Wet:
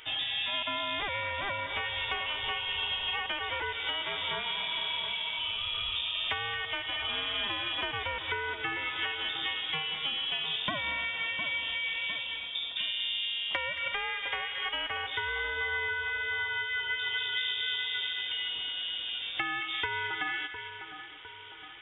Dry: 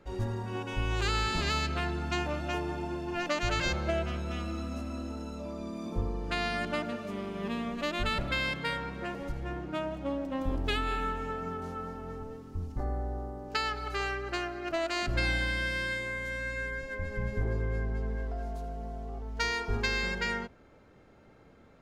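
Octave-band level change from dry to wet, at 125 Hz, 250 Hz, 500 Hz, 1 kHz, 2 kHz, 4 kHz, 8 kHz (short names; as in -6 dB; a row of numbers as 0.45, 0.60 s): -15.5 dB, -14.5 dB, -7.5 dB, -1.0 dB, +3.5 dB, +10.0 dB, under -30 dB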